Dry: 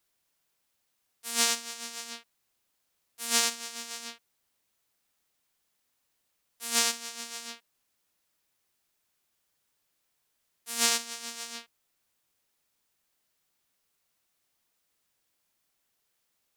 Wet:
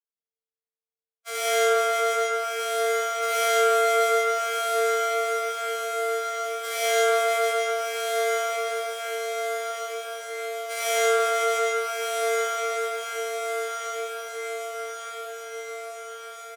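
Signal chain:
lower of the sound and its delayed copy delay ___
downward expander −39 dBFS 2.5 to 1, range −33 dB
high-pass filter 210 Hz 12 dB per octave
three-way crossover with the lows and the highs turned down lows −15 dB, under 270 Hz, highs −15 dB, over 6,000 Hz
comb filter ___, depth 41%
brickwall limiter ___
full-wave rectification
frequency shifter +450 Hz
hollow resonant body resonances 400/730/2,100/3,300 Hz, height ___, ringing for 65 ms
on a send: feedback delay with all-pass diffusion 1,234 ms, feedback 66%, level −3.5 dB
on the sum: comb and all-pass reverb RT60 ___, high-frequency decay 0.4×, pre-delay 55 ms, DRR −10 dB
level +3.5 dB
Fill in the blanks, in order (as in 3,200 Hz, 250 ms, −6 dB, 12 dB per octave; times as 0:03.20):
1.1 ms, 2.1 ms, −20.5 dBFS, 13 dB, 2.3 s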